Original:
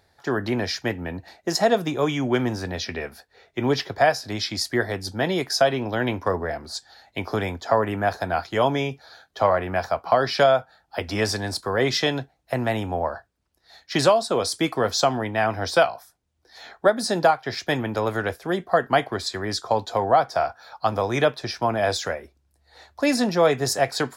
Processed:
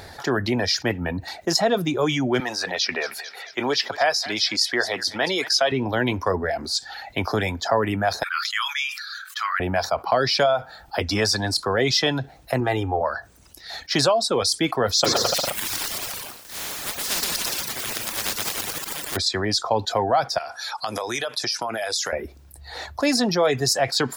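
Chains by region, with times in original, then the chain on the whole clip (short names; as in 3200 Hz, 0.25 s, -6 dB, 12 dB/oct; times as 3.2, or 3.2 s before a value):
2.4–5.72 weighting filter A + thinning echo 0.222 s, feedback 35%, high-pass 1100 Hz, level -13 dB
8.23–9.6 Chebyshev high-pass 1200 Hz, order 5 + sustainer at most 92 dB/s
12.6–13.01 high shelf 2600 Hz -7 dB + comb 2.5 ms, depth 56%
15.04–19.15 spectral contrast lowered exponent 0.11 + auto swell 0.734 s + bouncing-ball echo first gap 0.12 s, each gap 0.8×, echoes 7, each echo -2 dB
20.38–22.13 RIAA curve recording + compressor, threshold -31 dBFS + brick-wall FIR low-pass 12000 Hz
whole clip: reverb removal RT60 0.84 s; dynamic EQ 4900 Hz, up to +5 dB, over -42 dBFS, Q 1.4; fast leveller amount 50%; gain -3 dB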